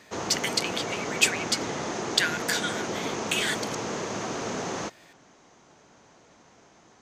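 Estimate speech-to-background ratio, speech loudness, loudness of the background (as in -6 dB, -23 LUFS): 4.0 dB, -28.0 LUFS, -32.0 LUFS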